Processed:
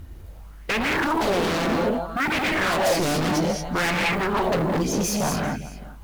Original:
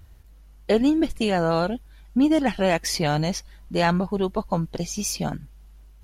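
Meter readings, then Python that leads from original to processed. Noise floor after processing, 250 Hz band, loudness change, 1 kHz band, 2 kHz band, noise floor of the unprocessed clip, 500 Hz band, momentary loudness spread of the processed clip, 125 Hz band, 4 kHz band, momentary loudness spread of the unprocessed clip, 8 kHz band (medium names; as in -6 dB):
-41 dBFS, -2.0 dB, +0.5 dB, +3.5 dB, +7.5 dB, -49 dBFS, +0.5 dB, 5 LU, -0.5 dB, +2.5 dB, 10 LU, +1.5 dB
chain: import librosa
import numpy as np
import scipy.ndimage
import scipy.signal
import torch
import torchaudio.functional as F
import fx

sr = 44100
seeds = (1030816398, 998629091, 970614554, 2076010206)

p1 = fx.high_shelf(x, sr, hz=4000.0, db=-10.5)
p2 = fx.quant_companded(p1, sr, bits=8)
p3 = p2 + fx.echo_single(p2, sr, ms=397, db=-21.0, dry=0)
p4 = fx.rev_gated(p3, sr, seeds[0], gate_ms=250, shape='rising', drr_db=2.0)
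p5 = fx.fold_sine(p4, sr, drive_db=19, ceiling_db=-5.5)
p6 = p4 + (p5 * 10.0 ** (-7.5 / 20.0))
p7 = fx.high_shelf(p6, sr, hz=8000.0, db=6.5)
p8 = np.clip(10.0 ** (14.0 / 20.0) * p7, -1.0, 1.0) / 10.0 ** (14.0 / 20.0)
p9 = fx.bell_lfo(p8, sr, hz=0.62, low_hz=260.0, high_hz=2400.0, db=10)
y = p9 * 10.0 ** (-9.0 / 20.0)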